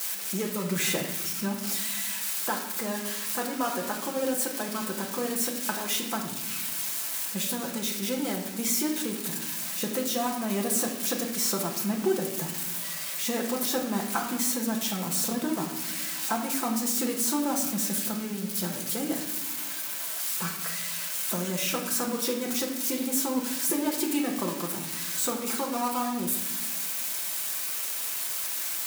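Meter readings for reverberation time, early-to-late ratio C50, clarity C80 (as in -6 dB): no single decay rate, 6.0 dB, 8.5 dB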